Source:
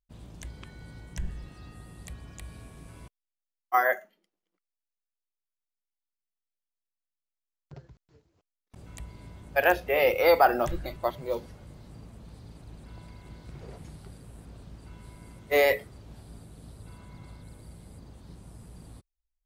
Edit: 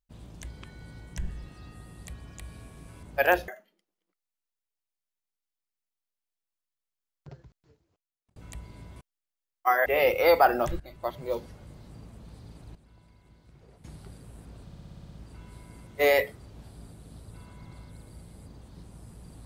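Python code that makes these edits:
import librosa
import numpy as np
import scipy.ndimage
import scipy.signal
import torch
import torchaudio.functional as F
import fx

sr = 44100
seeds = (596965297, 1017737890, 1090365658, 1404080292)

y = fx.edit(x, sr, fx.swap(start_s=3.03, length_s=0.9, other_s=9.41, other_length_s=0.45),
    fx.fade_out_span(start_s=7.74, length_s=1.07, curve='qsin'),
    fx.fade_in_from(start_s=10.8, length_s=0.43, floor_db=-16.5),
    fx.clip_gain(start_s=12.75, length_s=1.09, db=-11.5),
    fx.stutter(start_s=14.64, slice_s=0.06, count=9), tone=tone)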